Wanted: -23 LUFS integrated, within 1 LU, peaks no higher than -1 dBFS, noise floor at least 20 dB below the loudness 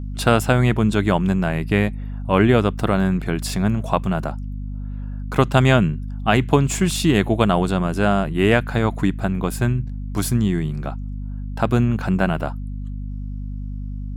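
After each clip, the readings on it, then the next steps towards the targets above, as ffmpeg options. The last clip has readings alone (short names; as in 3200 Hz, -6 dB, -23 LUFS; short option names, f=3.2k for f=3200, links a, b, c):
hum 50 Hz; harmonics up to 250 Hz; hum level -26 dBFS; loudness -20.0 LUFS; peak -2.0 dBFS; loudness target -23.0 LUFS
-> -af "bandreject=f=50:t=h:w=6,bandreject=f=100:t=h:w=6,bandreject=f=150:t=h:w=6,bandreject=f=200:t=h:w=6,bandreject=f=250:t=h:w=6"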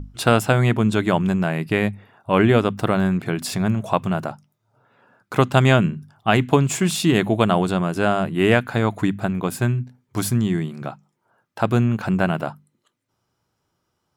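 hum none; loudness -20.5 LUFS; peak -2.0 dBFS; loudness target -23.0 LUFS
-> -af "volume=-2.5dB"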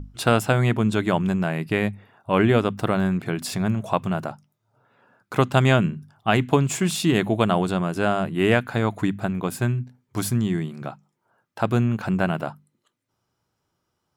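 loudness -23.0 LUFS; peak -4.5 dBFS; noise floor -77 dBFS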